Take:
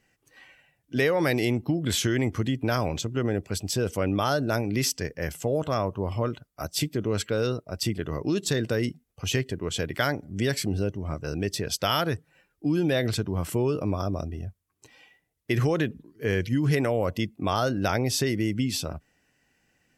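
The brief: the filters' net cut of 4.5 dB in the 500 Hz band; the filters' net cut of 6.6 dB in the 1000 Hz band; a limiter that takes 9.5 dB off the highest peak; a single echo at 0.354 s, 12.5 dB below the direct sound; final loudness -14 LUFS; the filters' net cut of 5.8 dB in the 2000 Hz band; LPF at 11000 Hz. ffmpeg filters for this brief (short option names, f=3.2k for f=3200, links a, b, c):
-af "lowpass=11k,equalizer=f=500:t=o:g=-4,equalizer=f=1k:t=o:g=-6.5,equalizer=f=2k:t=o:g=-5,alimiter=limit=-24dB:level=0:latency=1,aecho=1:1:354:0.237,volume=20dB"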